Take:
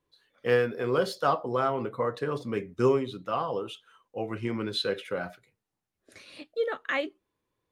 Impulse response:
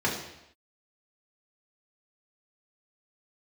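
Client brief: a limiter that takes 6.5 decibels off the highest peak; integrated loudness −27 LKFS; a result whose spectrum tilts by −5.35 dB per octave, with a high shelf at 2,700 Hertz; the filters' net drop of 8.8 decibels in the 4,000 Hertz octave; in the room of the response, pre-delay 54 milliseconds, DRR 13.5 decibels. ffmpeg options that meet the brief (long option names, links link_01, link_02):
-filter_complex "[0:a]highshelf=frequency=2700:gain=-7.5,equalizer=frequency=4000:width_type=o:gain=-4.5,alimiter=limit=-19dB:level=0:latency=1,asplit=2[link_01][link_02];[1:a]atrim=start_sample=2205,adelay=54[link_03];[link_02][link_03]afir=irnorm=-1:irlink=0,volume=-25.5dB[link_04];[link_01][link_04]amix=inputs=2:normalize=0,volume=4.5dB"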